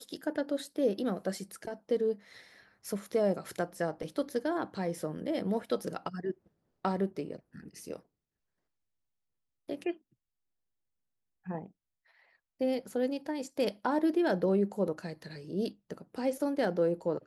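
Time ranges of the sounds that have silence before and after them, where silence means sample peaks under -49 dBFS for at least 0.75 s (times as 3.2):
9.69–9.97
11.46–11.68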